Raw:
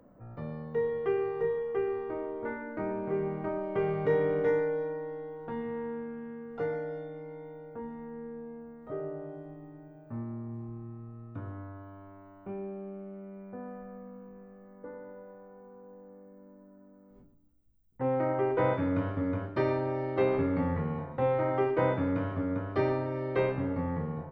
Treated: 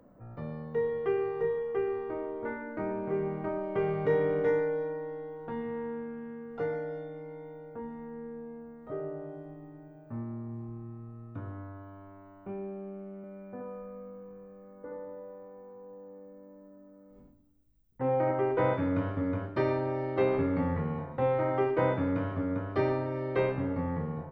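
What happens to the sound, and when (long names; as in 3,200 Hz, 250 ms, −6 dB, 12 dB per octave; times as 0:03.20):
0:13.16–0:18.31: single-tap delay 75 ms −4.5 dB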